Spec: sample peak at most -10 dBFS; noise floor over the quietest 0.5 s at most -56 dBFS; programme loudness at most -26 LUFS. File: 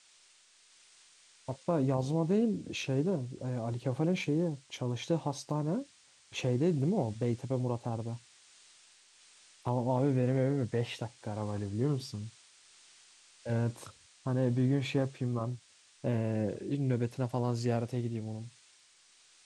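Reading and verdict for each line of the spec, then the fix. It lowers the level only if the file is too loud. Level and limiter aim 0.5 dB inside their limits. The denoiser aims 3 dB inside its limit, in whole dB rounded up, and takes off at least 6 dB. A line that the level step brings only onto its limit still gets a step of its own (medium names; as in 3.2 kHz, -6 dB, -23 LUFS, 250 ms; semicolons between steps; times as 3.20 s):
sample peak -17.0 dBFS: pass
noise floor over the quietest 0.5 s -63 dBFS: pass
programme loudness -33.0 LUFS: pass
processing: none needed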